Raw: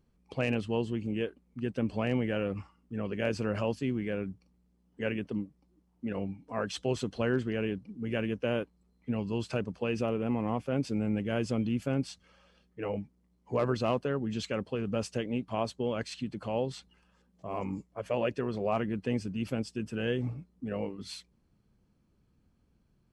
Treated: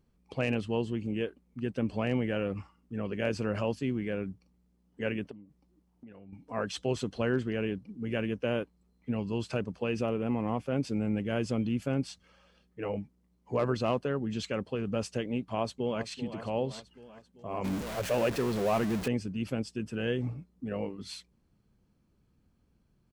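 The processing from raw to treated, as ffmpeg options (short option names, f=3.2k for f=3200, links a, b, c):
-filter_complex "[0:a]asettb=1/sr,asplit=3[a][b][c];[a]atrim=end=5.314[d];[b]atrim=start=5.31:end=6.33,asetpts=PTS-STARTPTS,afade=t=in:d=0.004:c=qsin,afade=t=out:st=1.016:d=0.004:c=qsin,acompressor=threshold=-46dB:ratio=12:attack=3.2:release=140:knee=1:detection=peak[e];[c]atrim=start=6.326[f];[d][e]acrossfade=d=0.004:c1=hsin:c2=qsin[g];[g][f]acrossfade=d=0.004:c1=qsin:c2=hsin,asplit=2[h][i];[i]afade=t=in:st=15.39:d=0.01,afade=t=out:st=16.04:d=0.01,aecho=0:1:390|780|1170|1560|1950|2340|2730:0.266073|0.159644|0.0957861|0.0574717|0.034483|0.0206898|0.0124139[j];[h][j]amix=inputs=2:normalize=0,asettb=1/sr,asplit=3[k][l][m];[k]atrim=end=17.644[n];[l]atrim=start=17.64:end=19.08,asetpts=PTS-STARTPTS,afade=t=in:d=0.004:c=qsin,afade=t=out:st=1.436:d=0.004:c=qsin,aeval=exprs='val(0)+0.5*0.0251*sgn(val(0))':c=same[o];[m]atrim=start=19.076[p];[n][o]acrossfade=d=0.004:c1=hsin:c2=qsin[q];[q][p]acrossfade=d=0.004:c1=qsin:c2=hsin"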